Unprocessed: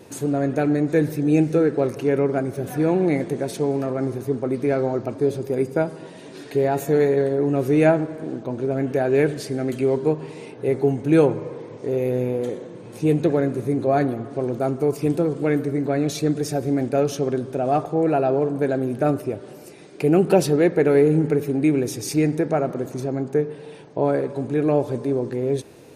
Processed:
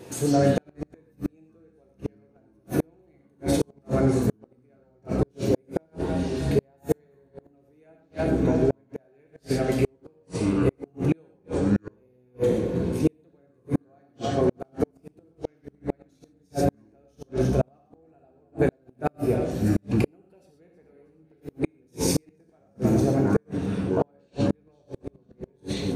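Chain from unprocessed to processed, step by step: on a send: two-band feedback delay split 520 Hz, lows 724 ms, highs 318 ms, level -14.5 dB; on the sum: ever faster or slower copies 85 ms, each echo -7 st, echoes 2, each echo -6 dB; gated-style reverb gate 150 ms flat, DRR 1 dB; inverted gate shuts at -10 dBFS, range -42 dB

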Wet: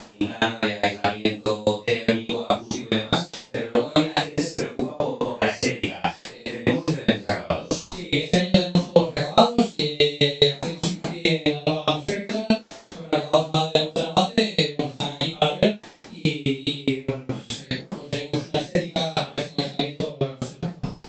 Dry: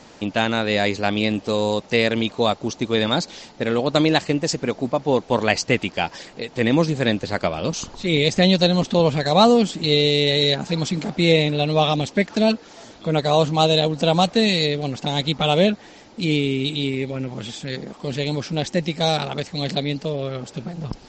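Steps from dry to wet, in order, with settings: phase randomisation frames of 200 ms; in parallel at -1 dB: compression, threshold -26 dBFS, peak gain reduction 16 dB; on the sum: hum notches 50/100/150 Hz; sawtooth tremolo in dB decaying 4.8 Hz, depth 28 dB; trim +2.5 dB

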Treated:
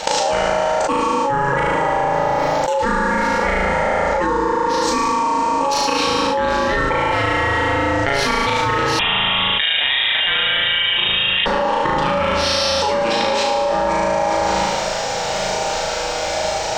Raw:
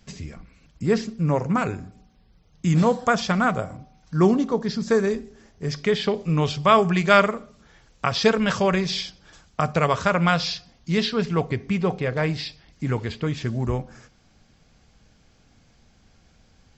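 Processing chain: tracing distortion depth 0.044 ms; high-pass 50 Hz 12 dB/octave; peaking EQ 330 Hz -6.5 dB 1.5 oct; hum notches 60/120/180/240/300/360/420/480/540 Hz; level held to a coarse grid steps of 24 dB; slow attack 279 ms; ring modulator 700 Hz; flutter echo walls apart 6.3 m, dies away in 1.1 s; plate-style reverb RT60 1.9 s, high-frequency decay 0.75×, DRR 1 dB; 8.99–11.46 s: frequency inversion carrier 3.7 kHz; level flattener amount 100%; trim +7 dB

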